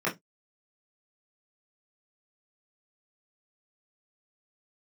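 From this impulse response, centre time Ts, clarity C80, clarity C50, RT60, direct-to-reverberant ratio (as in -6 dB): 22 ms, 28.0 dB, 15.0 dB, 0.15 s, -7.0 dB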